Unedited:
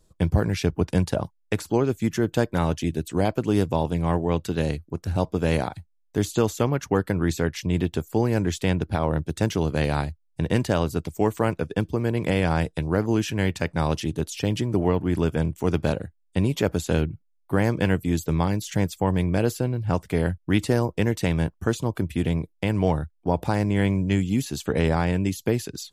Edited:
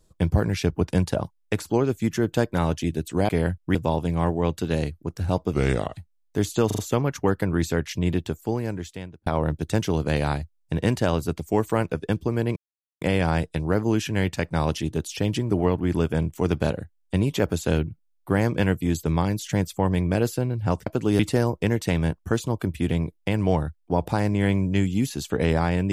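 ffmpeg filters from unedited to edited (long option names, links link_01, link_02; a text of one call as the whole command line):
ffmpeg -i in.wav -filter_complex "[0:a]asplit=12[link_01][link_02][link_03][link_04][link_05][link_06][link_07][link_08][link_09][link_10][link_11][link_12];[link_01]atrim=end=3.292[link_13];[link_02]atrim=start=20.088:end=20.552[link_14];[link_03]atrim=start=3.618:end=5.404[link_15];[link_04]atrim=start=5.4:end=5.76,asetpts=PTS-STARTPTS,asetrate=36603,aresample=44100[link_16];[link_05]atrim=start=5.756:end=6.502[link_17];[link_06]atrim=start=6.458:end=6.502[link_18];[link_07]atrim=start=6.458:end=6.502[link_19];[link_08]atrim=start=6.458:end=8.94,asetpts=PTS-STARTPTS,afade=type=out:start_time=1.312:duration=1.17[link_20];[link_09]atrim=start=8.94:end=12.24,asetpts=PTS-STARTPTS,afade=type=in:duration=0.004:curve=hsin,afade=type=out:start_time=3.296:duration=0.004:curve=hsin,apad=pad_dur=0.45[link_21];[link_10]atrim=start=12.24:end=20.092,asetpts=PTS-STARTPTS,afade=type=in:duration=0.004:curve=hsin[link_22];[link_11]atrim=start=3.288:end=3.622[link_23];[link_12]atrim=start=20.548[link_24];[link_13][link_14]acrossfade=duration=0.004:curve1=hsin:curve2=hsin[link_25];[link_25][link_15]acrossfade=duration=0.004:curve1=hsin:curve2=hsin[link_26];[link_26][link_16]acrossfade=duration=0.004:curve1=hsin:curve2=hsin[link_27];[link_27][link_17]acrossfade=duration=0.004:curve1=hsin:curve2=hsin[link_28];[link_28][link_18]acrossfade=duration=0.004:curve1=hsin:curve2=hsin[link_29];[link_29][link_19]acrossfade=duration=0.004:curve1=hsin:curve2=hsin[link_30];[link_20][link_21][link_22]concat=n=3:v=0:a=1[link_31];[link_30][link_31]acrossfade=duration=0.004:curve1=hsin:curve2=hsin[link_32];[link_32][link_23]acrossfade=duration=0.004:curve1=hsin:curve2=hsin[link_33];[link_33][link_24]acrossfade=duration=0.004:curve1=hsin:curve2=hsin" out.wav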